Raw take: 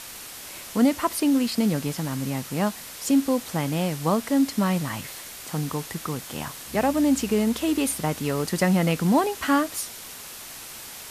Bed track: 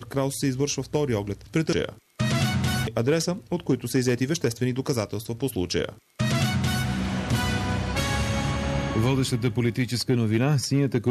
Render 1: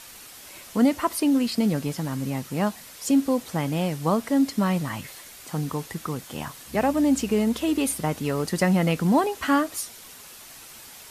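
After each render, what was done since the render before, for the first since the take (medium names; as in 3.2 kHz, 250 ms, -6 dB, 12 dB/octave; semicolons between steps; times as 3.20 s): noise reduction 6 dB, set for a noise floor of -40 dBFS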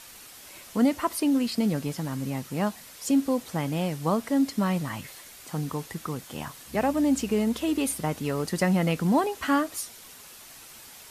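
trim -2.5 dB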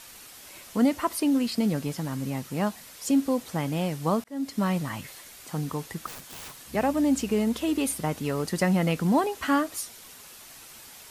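4.24–4.64 s: fade in; 6.06–6.57 s: integer overflow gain 36 dB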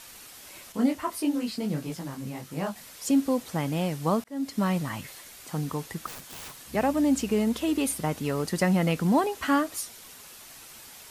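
0.72–2.76 s: detune thickener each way 56 cents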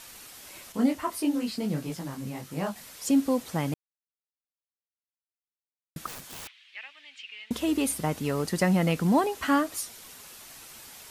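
3.74–5.96 s: mute; 6.47–7.51 s: Butterworth band-pass 2.7 kHz, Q 1.8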